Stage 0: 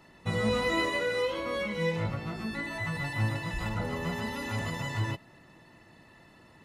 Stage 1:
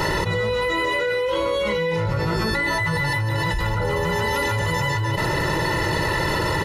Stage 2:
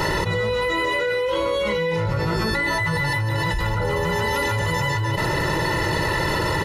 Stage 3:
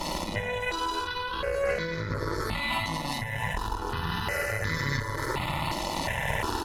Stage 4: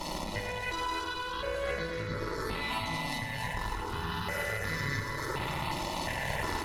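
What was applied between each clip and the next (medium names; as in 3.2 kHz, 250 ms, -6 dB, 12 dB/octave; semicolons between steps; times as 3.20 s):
band-stop 2.3 kHz, Q 18; comb 2.1 ms, depth 77%; level flattener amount 100%
no audible change
reverse bouncing-ball echo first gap 50 ms, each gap 1.15×, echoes 5; Chebyshev shaper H 4 -8 dB, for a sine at -5 dBFS; stepped phaser 2.8 Hz 430–2800 Hz; trim -8.5 dB
two-band feedback delay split 2 kHz, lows 112 ms, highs 286 ms, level -5.5 dB; trim -5 dB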